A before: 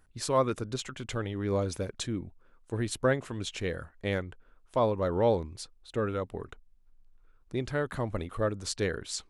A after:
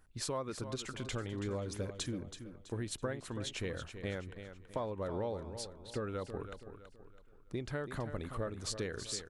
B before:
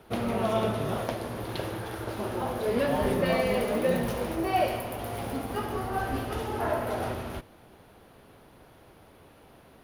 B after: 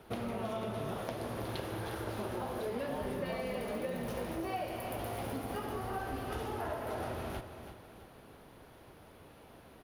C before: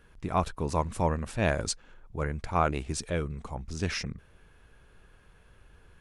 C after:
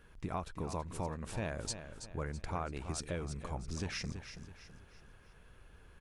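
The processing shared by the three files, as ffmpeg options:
-af "acompressor=threshold=-33dB:ratio=6,aecho=1:1:328|656|984|1312:0.316|0.126|0.0506|0.0202,volume=-2dB"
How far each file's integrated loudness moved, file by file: −8.5, −9.0, −9.5 LU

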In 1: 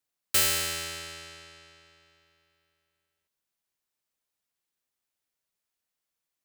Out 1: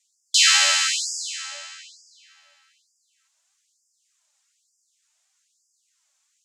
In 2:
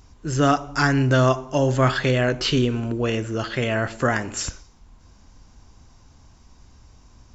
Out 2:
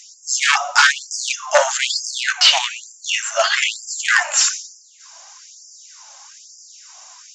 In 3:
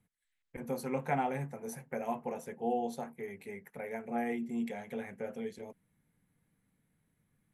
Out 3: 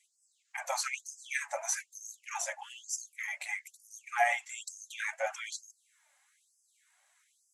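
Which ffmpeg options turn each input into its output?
-filter_complex "[0:a]flanger=delay=2.4:depth=1.5:regen=43:speed=1.7:shape=triangular,aeval=exprs='0.316*sin(PI/2*2.82*val(0)/0.316)':channel_layout=same,acrossover=split=5100[link_01][link_02];[link_02]acompressor=threshold=-37dB:ratio=4:attack=1:release=60[link_03];[link_01][link_03]amix=inputs=2:normalize=0,lowpass=frequency=7100:width_type=q:width=3.4,afftfilt=real='re*gte(b*sr/1024,540*pow(4800/540,0.5+0.5*sin(2*PI*1.1*pts/sr)))':imag='im*gte(b*sr/1024,540*pow(4800/540,0.5+0.5*sin(2*PI*1.1*pts/sr)))':win_size=1024:overlap=0.75,volume=5dB"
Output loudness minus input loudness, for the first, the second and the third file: +8.0, +5.0, +2.0 LU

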